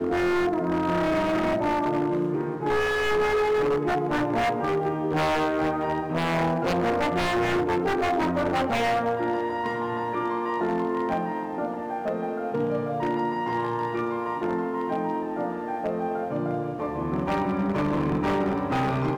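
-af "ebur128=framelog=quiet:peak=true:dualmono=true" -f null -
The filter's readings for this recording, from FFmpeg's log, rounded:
Integrated loudness:
  I:         -22.9 LUFS
  Threshold: -32.9 LUFS
Loudness range:
  LRA:         3.8 LU
  Threshold: -43.0 LUFS
  LRA low:   -25.2 LUFS
  LRA high:  -21.4 LUFS
True peak:
  Peak:      -18.4 dBFS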